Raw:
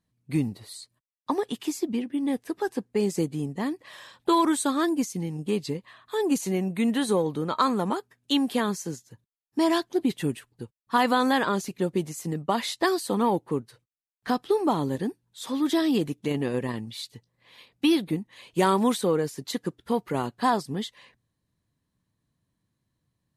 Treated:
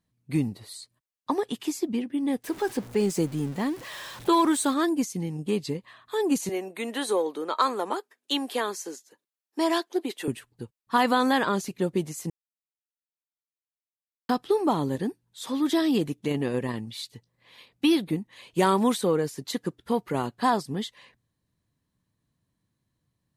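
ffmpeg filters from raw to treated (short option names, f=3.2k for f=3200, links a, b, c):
-filter_complex "[0:a]asettb=1/sr,asplit=3[a][b][c];[a]atrim=end=2.444[d];[b]atrim=start=2.44:end=4.74,asetpts=PTS-STARTPTS,afade=t=in:d=0.004:c=qsin,afade=t=out:st=2.296:d=0.004:c=qsin,aeval=exprs='val(0)+0.5*0.0126*sgn(val(0))':c=same[e];[c]atrim=start=4.736[f];[d][e]acrossfade=d=0.004:c1=hsin:c2=qsin[g];[g][f]acrossfade=d=0.004:c1=qsin:c2=hsin,asettb=1/sr,asplit=3[h][i][j];[h]atrim=end=6.494[k];[i]atrim=start=6.49:end=10.28,asetpts=PTS-STARTPTS,afade=t=in:d=0.004:c=qsin,afade=t=out:st=3.786:d=0.004:c=qsin,highpass=f=330:w=0.5412,highpass=f=330:w=1.3066[l];[j]atrim=start=10.276[m];[k][l]acrossfade=d=0.004:c1=hsin:c2=qsin[n];[n][m]acrossfade=d=0.004:c1=qsin:c2=hsin,asplit=3[o][p][q];[o]atrim=end=12.3,asetpts=PTS-STARTPTS,afade=t=out:st=12.296:d=0.004:c=hsin[r];[p]atrim=start=12.3:end=14.29,asetpts=PTS-STARTPTS,volume=0[s];[q]atrim=start=14.29,asetpts=PTS-STARTPTS,afade=t=in:d=0.004:c=hsin[t];[r][s][t]concat=n=3:v=0:a=1"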